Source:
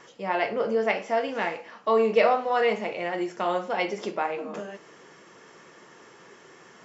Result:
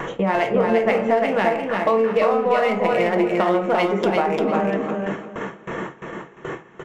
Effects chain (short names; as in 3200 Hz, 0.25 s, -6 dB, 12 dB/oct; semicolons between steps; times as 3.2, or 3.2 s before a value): Wiener smoothing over 9 samples; low shelf 120 Hz +10.5 dB; in parallel at +1 dB: upward compressor, threshold -25 dBFS; on the sum: high shelf 3500 Hz -2.5 dB; shoebox room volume 320 m³, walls furnished, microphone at 0.65 m; compressor 6:1, threshold -23 dBFS, peak gain reduction 15 dB; gate with hold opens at -24 dBFS; on a send: feedback echo 0.347 s, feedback 25%, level -3.5 dB; on the sum: gain +6 dB